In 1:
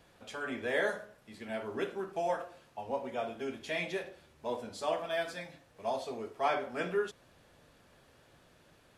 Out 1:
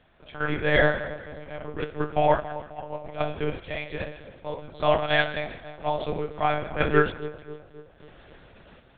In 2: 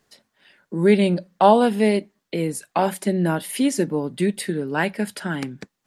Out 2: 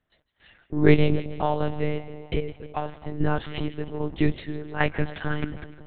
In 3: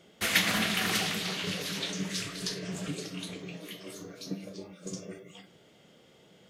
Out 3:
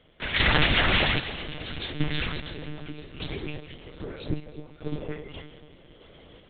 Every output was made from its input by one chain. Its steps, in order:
sample-and-hold tremolo 2.5 Hz, depth 75%
echo with a time of its own for lows and highs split 1,000 Hz, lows 267 ms, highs 154 ms, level −14.5 dB
one-pitch LPC vocoder at 8 kHz 150 Hz
loudness normalisation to −27 LKFS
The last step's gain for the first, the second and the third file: +12.0, +1.0, +9.5 decibels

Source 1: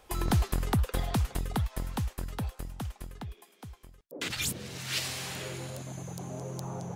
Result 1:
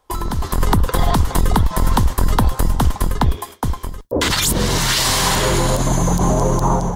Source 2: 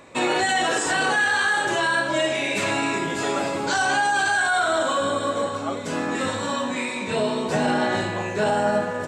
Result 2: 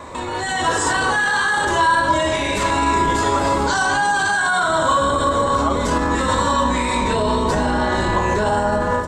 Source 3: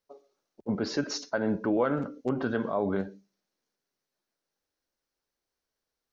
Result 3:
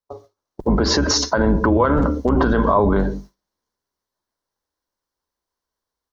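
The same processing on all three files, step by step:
sub-octave generator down 2 octaves, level −1 dB
dynamic equaliser 740 Hz, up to −4 dB, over −37 dBFS, Q 3.8
downward compressor 6 to 1, threshold −30 dBFS
noise gate with hold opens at −44 dBFS
brickwall limiter −30.5 dBFS
automatic gain control gain up to 9 dB
thirty-one-band graphic EQ 125 Hz −4 dB, 1,000 Hz +10 dB, 2,500 Hz −8 dB
loudness normalisation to −18 LKFS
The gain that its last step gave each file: +15.0, +10.0, +13.5 decibels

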